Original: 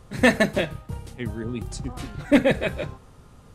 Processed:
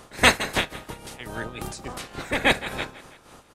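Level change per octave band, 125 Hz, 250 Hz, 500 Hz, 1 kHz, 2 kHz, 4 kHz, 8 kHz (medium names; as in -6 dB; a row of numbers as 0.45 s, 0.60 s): -5.5 dB, -9.5 dB, -6.0 dB, +5.0 dB, +2.5 dB, +7.5 dB, +7.0 dB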